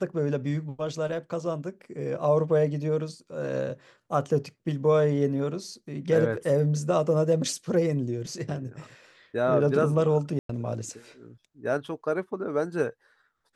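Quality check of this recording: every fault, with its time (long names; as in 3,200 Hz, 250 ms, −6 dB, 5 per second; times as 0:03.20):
0:10.39–0:10.49: drop-out 103 ms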